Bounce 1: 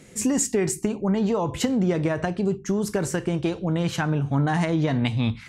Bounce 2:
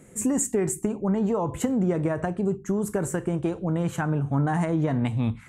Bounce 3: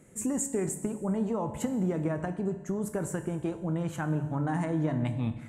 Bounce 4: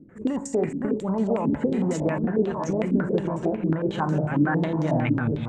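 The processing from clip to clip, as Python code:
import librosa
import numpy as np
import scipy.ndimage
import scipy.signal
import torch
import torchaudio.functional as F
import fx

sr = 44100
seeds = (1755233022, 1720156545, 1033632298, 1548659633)

y1 = fx.curve_eq(x, sr, hz=(1300.0, 5100.0, 7500.0), db=(0, -16, 1))
y1 = F.gain(torch.from_numpy(y1), -1.5).numpy()
y2 = fx.rev_fdn(y1, sr, rt60_s=1.4, lf_ratio=1.3, hf_ratio=1.0, size_ms=10.0, drr_db=9.5)
y2 = F.gain(torch.from_numpy(y2), -6.0).numpy()
y3 = fx.reverse_delay_fb(y2, sr, ms=595, feedback_pct=58, wet_db=-5.0)
y3 = fx.filter_held_lowpass(y3, sr, hz=11.0, low_hz=290.0, high_hz=5500.0)
y3 = F.gain(torch.from_numpy(y3), 3.0).numpy()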